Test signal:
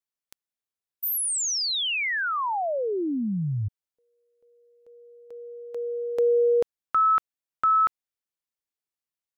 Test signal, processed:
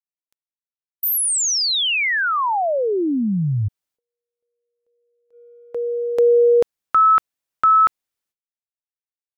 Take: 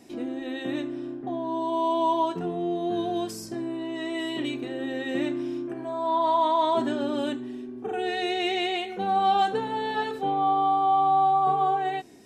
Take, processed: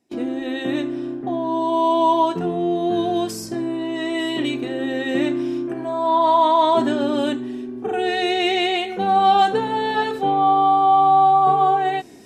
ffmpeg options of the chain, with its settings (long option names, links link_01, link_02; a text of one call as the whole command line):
ffmpeg -i in.wav -af "agate=range=-25dB:threshold=-38dB:ratio=16:release=397:detection=rms,volume=7dB" out.wav